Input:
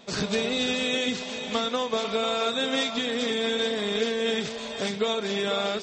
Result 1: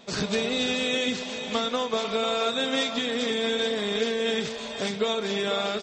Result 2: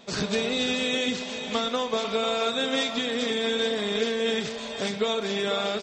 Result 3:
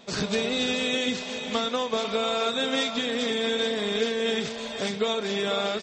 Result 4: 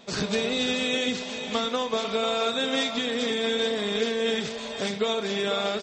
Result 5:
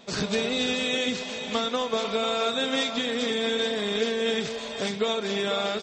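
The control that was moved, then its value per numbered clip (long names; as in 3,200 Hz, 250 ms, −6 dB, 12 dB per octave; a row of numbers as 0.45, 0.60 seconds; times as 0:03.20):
far-end echo of a speakerphone, delay time: 180, 120, 400, 80, 260 milliseconds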